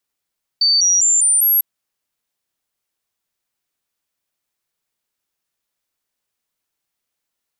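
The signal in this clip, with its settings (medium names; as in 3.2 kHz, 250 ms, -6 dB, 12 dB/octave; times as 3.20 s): stepped sine 4.57 kHz up, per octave 3, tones 5, 0.20 s, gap 0.00 s -11 dBFS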